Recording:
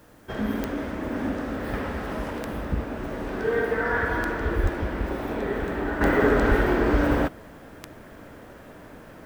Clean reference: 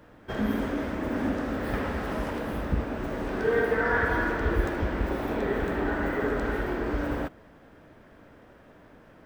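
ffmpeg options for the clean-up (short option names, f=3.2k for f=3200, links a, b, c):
-filter_complex "[0:a]adeclick=t=4,asplit=3[a][b][c];[a]afade=t=out:st=4.62:d=0.02[d];[b]highpass=f=140:w=0.5412,highpass=f=140:w=1.3066,afade=t=in:st=4.62:d=0.02,afade=t=out:st=4.74:d=0.02[e];[c]afade=t=in:st=4.74:d=0.02[f];[d][e][f]amix=inputs=3:normalize=0,asplit=3[g][h][i];[g]afade=t=out:st=6.48:d=0.02[j];[h]highpass=f=140:w=0.5412,highpass=f=140:w=1.3066,afade=t=in:st=6.48:d=0.02,afade=t=out:st=6.6:d=0.02[k];[i]afade=t=in:st=6.6:d=0.02[l];[j][k][l]amix=inputs=3:normalize=0,agate=range=-21dB:threshold=-37dB,asetnsamples=n=441:p=0,asendcmd='6.01 volume volume -8dB',volume=0dB"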